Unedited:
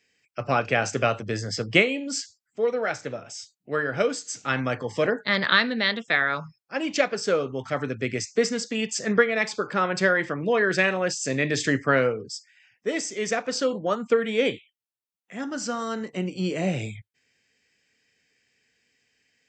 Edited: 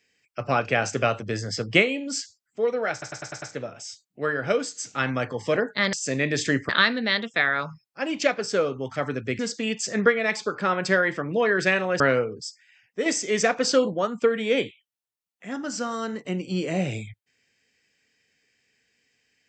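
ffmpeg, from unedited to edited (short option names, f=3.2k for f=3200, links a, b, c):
-filter_complex "[0:a]asplit=12[a][b][c][d][e][f][g][h][i][j][k][l];[a]atrim=end=3.022[m];[b]atrim=start=2.918:end=3.022[n];[c]atrim=start=2.918:end=3.022[o];[d]atrim=start=2.918:end=3.022[p];[e]atrim=start=2.918:end=3.022[q];[f]atrim=start=2.918:end=5.432[r];[g]atrim=start=11.118:end=11.882[s];[h]atrim=start=5.428:end=8.132[t];[i]atrim=start=8.508:end=11.122[u];[j]atrim=start=11.878:end=12.942[v];[k]atrim=start=12.938:end=13.822,asetpts=PTS-STARTPTS,volume=4.5dB[w];[l]atrim=start=13.818[x];[m][n]acrossfade=d=0.004:c1=hsin:c2=hsin[y];[y][o]acrossfade=d=0.004:c1=hsin:c2=hsin[z];[z][p]acrossfade=d=0.004:c1=hsin:c2=hsin[aa];[aa][q]acrossfade=d=0.004:c1=hsin:c2=hsin[ab];[ab][r]acrossfade=d=0.004:c1=hsin:c2=hsin[ac];[ac][s]acrossfade=d=0.004:c1=hsin:c2=hsin[ad];[ad][t]acrossfade=d=0.004:c1=hsin:c2=hsin[ae];[ae][u]acrossfade=d=0.004:c1=hsin:c2=hsin[af];[af][v]acrossfade=d=0.004:c1=hsin:c2=hsin[ag];[ag][w]acrossfade=d=0.004:c1=hsin:c2=hsin[ah];[ah][x]acrossfade=d=0.004:c1=hsin:c2=hsin"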